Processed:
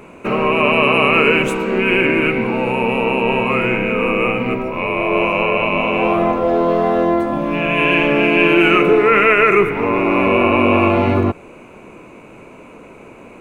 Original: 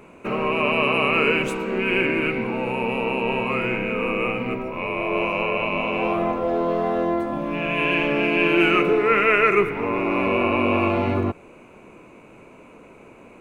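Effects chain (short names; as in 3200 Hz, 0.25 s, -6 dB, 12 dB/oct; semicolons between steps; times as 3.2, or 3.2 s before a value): dynamic EQ 4700 Hz, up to -5 dB, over -42 dBFS, Q 2.2; maximiser +8 dB; gain -1 dB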